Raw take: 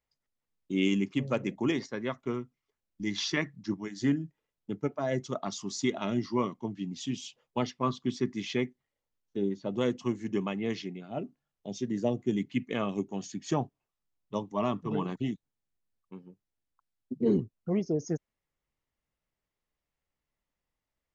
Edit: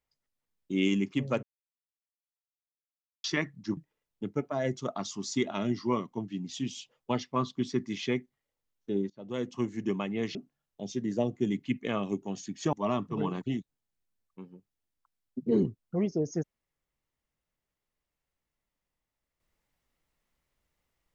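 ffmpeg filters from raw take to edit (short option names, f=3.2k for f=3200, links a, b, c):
-filter_complex "[0:a]asplit=7[a][b][c][d][e][f][g];[a]atrim=end=1.43,asetpts=PTS-STARTPTS,afade=t=out:st=1.426:d=0.004:c=hsin[h];[b]atrim=start=1.43:end=3.24,asetpts=PTS-STARTPTS,volume=0[i];[c]atrim=start=3.24:end=3.772,asetpts=PTS-STARTPTS,afade=t=in:d=0.004:c=hsin[j];[d]atrim=start=4.238:end=9.57,asetpts=PTS-STARTPTS,afade=t=out:st=5.328:d=0.004:c=hsin:silence=0.0841395[k];[e]atrim=start=9.57:end=10.822,asetpts=PTS-STARTPTS,afade=t=in:d=0.55:silence=0.0841395[l];[f]atrim=start=11.208:end=13.592[m];[g]atrim=start=14.468[n];[h][i][j]concat=n=3:v=0:a=1[o];[k][l]concat=n=2:v=0:a=1[p];[o][p]acrossfade=d=0.004:c1=hsin:c2=hsin[q];[q][m]acrossfade=d=0.004:c1=hsin:c2=hsin[r];[r][n]acrossfade=d=0.004:c1=hsin:c2=hsin"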